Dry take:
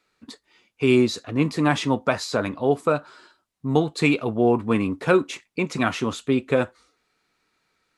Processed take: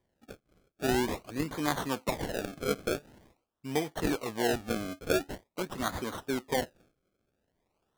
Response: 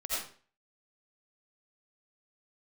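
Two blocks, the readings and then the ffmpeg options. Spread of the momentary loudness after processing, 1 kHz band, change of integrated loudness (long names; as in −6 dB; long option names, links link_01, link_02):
7 LU, −8.0 dB, −10.0 dB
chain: -af "bass=frequency=250:gain=-7,treble=frequency=4000:gain=9,acrusher=samples=32:mix=1:aa=0.000001:lfo=1:lforange=32:lforate=0.46,volume=-9dB"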